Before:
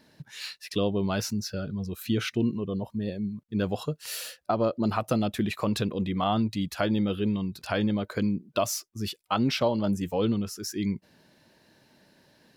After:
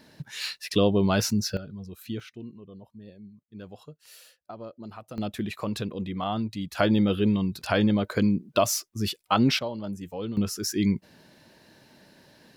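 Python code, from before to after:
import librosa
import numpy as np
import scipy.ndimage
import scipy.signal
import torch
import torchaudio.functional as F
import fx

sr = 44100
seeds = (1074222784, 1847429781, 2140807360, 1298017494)

y = fx.gain(x, sr, db=fx.steps((0.0, 5.0), (1.57, -7.0), (2.2, -15.0), (5.18, -3.5), (6.75, 4.0), (9.59, -7.5), (10.37, 5.0)))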